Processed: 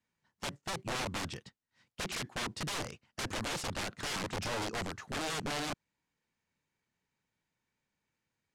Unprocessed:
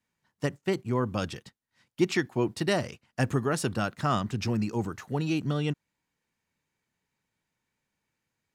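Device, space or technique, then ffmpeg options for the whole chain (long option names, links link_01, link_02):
overflowing digital effects unit: -af "aeval=exprs='(mod(23.7*val(0)+1,2)-1)/23.7':channel_layout=same,lowpass=8200,volume=-3dB"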